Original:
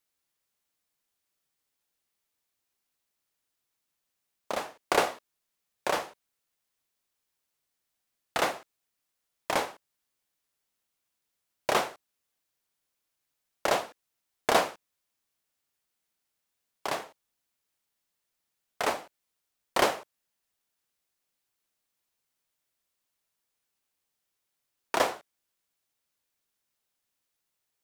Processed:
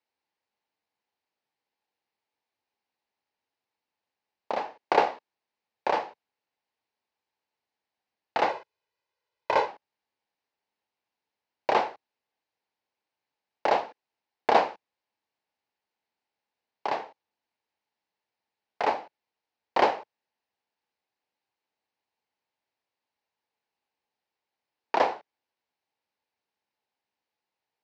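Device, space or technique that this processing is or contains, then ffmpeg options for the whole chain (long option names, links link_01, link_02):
guitar cabinet: -filter_complex "[0:a]highpass=100,equalizer=frequency=150:width_type=q:width=4:gain=-7,equalizer=frequency=460:width_type=q:width=4:gain=3,equalizer=frequency=850:width_type=q:width=4:gain=9,equalizer=frequency=1300:width_type=q:width=4:gain=-5,equalizer=frequency=3400:width_type=q:width=4:gain=-6,lowpass=frequency=4400:width=0.5412,lowpass=frequency=4400:width=1.3066,asettb=1/sr,asplit=3[link_01][link_02][link_03];[link_01]atrim=end=8.494[link_04];[link_02]atrim=start=8.49:end=9.67,asetpts=PTS-STARTPTS,afade=type=in:duration=0.004:curve=qsin,afade=type=out:start_time=1.176:duration=0.004:curve=qsin,aecho=1:1:2:0.75,atrim=end_sample=52038[link_05];[link_03]atrim=start=9.666[link_06];[link_04][link_05]acrossfade=duration=0.004:curve1=hsin:curve2=qsin[link_07];[link_07][link_06]acrossfade=duration=0.004:curve1=qsin:curve2=hsin"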